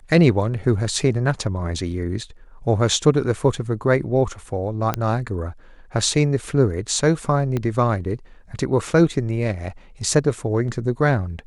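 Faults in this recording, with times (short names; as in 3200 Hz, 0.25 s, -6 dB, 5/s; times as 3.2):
4.94 pop -8 dBFS
7.57 pop -12 dBFS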